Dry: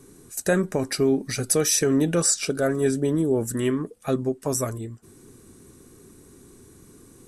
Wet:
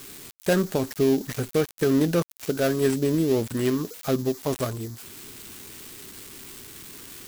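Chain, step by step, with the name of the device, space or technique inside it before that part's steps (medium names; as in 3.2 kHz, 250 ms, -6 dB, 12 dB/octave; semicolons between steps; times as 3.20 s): budget class-D amplifier (dead-time distortion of 0.16 ms; zero-crossing glitches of -23.5 dBFS)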